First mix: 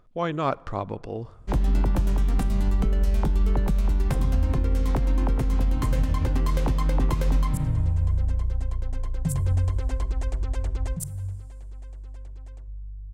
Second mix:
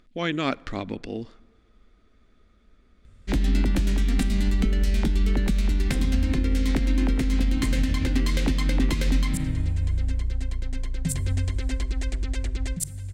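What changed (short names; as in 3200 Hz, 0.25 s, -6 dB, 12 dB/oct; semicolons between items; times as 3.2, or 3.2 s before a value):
background: entry +1.80 s; master: add graphic EQ 125/250/500/1000/2000/4000/8000 Hz -7/+9/-3/-9/+9/+8/+5 dB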